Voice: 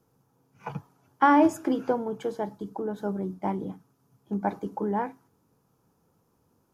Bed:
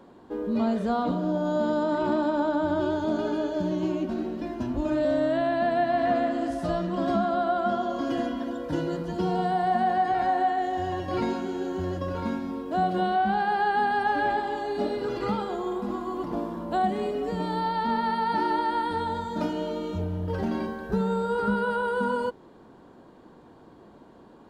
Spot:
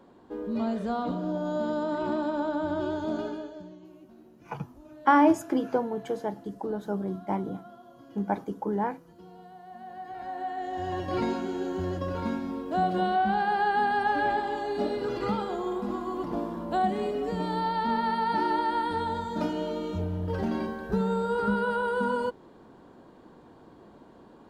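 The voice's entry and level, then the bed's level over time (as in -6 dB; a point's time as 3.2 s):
3.85 s, -0.5 dB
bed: 3.21 s -4 dB
3.85 s -23 dB
9.65 s -23 dB
10.98 s -1 dB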